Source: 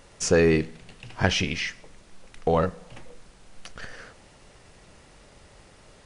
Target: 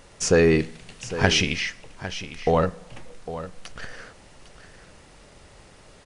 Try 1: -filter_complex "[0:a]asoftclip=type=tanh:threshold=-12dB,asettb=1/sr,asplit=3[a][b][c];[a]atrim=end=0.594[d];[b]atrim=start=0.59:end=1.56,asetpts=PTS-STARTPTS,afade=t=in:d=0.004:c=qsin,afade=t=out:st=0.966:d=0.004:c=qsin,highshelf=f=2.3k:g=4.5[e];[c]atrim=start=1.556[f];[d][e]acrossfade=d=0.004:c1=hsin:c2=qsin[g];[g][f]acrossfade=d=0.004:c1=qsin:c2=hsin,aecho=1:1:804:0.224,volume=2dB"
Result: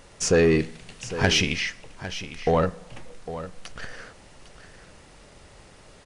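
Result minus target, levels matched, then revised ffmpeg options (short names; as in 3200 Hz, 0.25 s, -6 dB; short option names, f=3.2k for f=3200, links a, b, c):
soft clip: distortion +16 dB
-filter_complex "[0:a]asoftclip=type=tanh:threshold=-2dB,asettb=1/sr,asplit=3[a][b][c];[a]atrim=end=0.594[d];[b]atrim=start=0.59:end=1.56,asetpts=PTS-STARTPTS,afade=t=in:d=0.004:c=qsin,afade=t=out:st=0.966:d=0.004:c=qsin,highshelf=f=2.3k:g=4.5[e];[c]atrim=start=1.556[f];[d][e]acrossfade=d=0.004:c1=hsin:c2=qsin[g];[g][f]acrossfade=d=0.004:c1=qsin:c2=hsin,aecho=1:1:804:0.224,volume=2dB"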